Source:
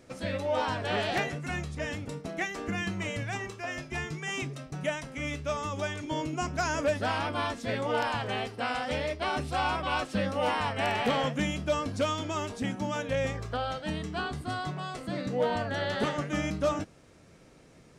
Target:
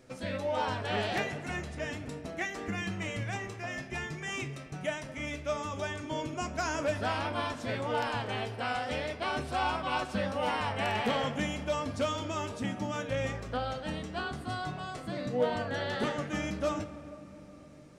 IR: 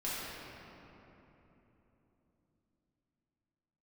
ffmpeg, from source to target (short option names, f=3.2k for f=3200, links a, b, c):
-filter_complex "[0:a]flanger=delay=7.8:depth=1.7:regen=69:speed=0.51:shape=sinusoidal,asplit=2[a][b];[1:a]atrim=start_sample=2205[c];[b][c]afir=irnorm=-1:irlink=0,volume=-15.5dB[d];[a][d]amix=inputs=2:normalize=0,volume=1dB"